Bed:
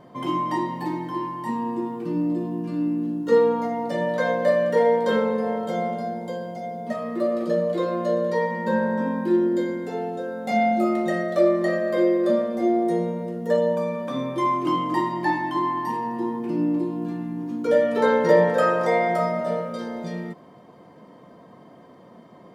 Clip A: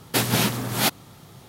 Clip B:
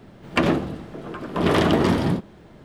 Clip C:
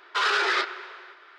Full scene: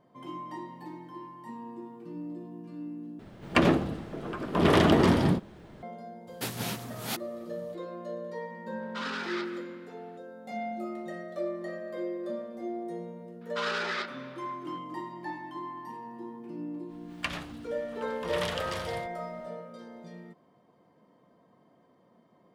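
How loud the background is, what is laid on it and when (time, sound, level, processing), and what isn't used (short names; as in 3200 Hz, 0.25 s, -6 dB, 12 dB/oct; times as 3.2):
bed -15 dB
3.19 replace with B -2.5 dB
6.27 add A -13 dB
8.8 add C -13 dB + speakerphone echo 0.17 s, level -10 dB
13.41 add C -9 dB
16.87 add B -5 dB, fades 0.05 s + passive tone stack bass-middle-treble 10-0-10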